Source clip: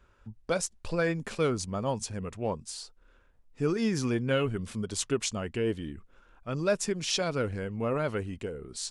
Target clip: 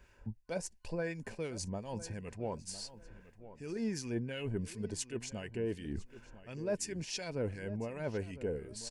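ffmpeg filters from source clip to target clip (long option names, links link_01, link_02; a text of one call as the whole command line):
ffmpeg -i in.wav -filter_complex "[0:a]superequalizer=10b=0.282:13b=0.501,areverse,acompressor=threshold=-41dB:ratio=4,areverse,acrossover=split=1500[link_01][link_02];[link_01]aeval=exprs='val(0)*(1-0.7/2+0.7/2*cos(2*PI*2.8*n/s))':channel_layout=same[link_03];[link_02]aeval=exprs='val(0)*(1-0.7/2-0.7/2*cos(2*PI*2.8*n/s))':channel_layout=same[link_04];[link_03][link_04]amix=inputs=2:normalize=0,asplit=2[link_05][link_06];[link_06]adelay=1005,lowpass=frequency=2900:poles=1,volume=-15dB,asplit=2[link_07][link_08];[link_08]adelay=1005,lowpass=frequency=2900:poles=1,volume=0.25,asplit=2[link_09][link_10];[link_10]adelay=1005,lowpass=frequency=2900:poles=1,volume=0.25[link_11];[link_05][link_07][link_09][link_11]amix=inputs=4:normalize=0,volume=7dB" out.wav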